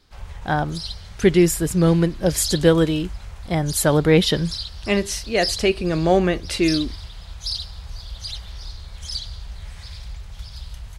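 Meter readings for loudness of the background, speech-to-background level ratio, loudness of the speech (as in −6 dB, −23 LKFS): −32.5 LKFS, 12.5 dB, −20.0 LKFS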